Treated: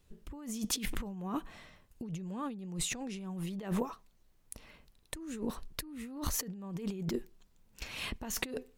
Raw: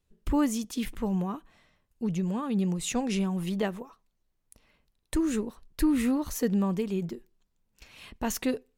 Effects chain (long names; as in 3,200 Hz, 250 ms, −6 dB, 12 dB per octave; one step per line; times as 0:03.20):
compressor whose output falls as the input rises −39 dBFS, ratio −1